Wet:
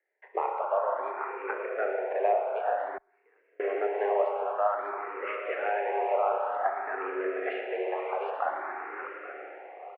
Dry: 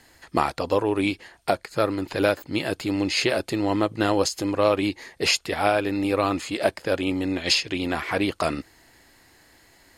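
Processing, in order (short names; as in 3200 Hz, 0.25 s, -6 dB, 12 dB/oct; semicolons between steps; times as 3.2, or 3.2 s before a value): regenerating reverse delay 0.416 s, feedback 44%, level -7 dB; gate with hold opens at -44 dBFS; in parallel at 0 dB: compressor, threshold -35 dBFS, peak gain reduction 19.5 dB; on the sum: short-mantissa float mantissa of 2-bit; mistuned SSB +95 Hz 320–2000 Hz; on a send: feedback echo 0.118 s, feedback 60%, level -12.5 dB; on the sum: spring tank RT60 3.8 s, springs 32/57 ms, chirp 60 ms, DRR 1 dB; 2.97–3.6 flipped gate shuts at -19 dBFS, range -33 dB; endless phaser +0.53 Hz; gain -6 dB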